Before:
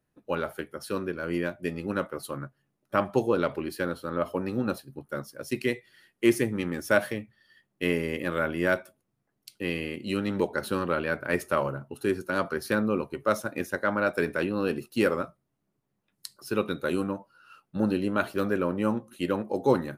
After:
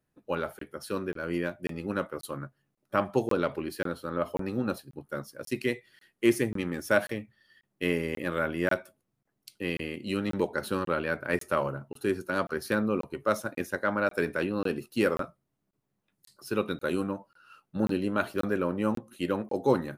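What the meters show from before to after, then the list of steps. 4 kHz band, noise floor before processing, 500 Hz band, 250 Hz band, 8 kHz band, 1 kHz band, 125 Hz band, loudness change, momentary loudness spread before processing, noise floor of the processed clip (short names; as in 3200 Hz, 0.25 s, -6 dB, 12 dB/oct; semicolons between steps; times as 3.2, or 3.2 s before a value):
-1.5 dB, -79 dBFS, -1.5 dB, -1.5 dB, -1.5 dB, -1.5 dB, -1.5 dB, -1.5 dB, 10 LU, -80 dBFS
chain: crackling interface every 0.54 s, samples 1024, zero, from 0.59; gain -1.5 dB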